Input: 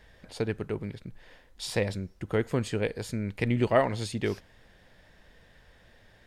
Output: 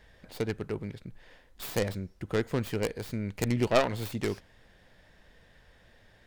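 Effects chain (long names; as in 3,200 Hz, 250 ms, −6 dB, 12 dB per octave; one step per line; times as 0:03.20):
stylus tracing distortion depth 0.43 ms
level −1.5 dB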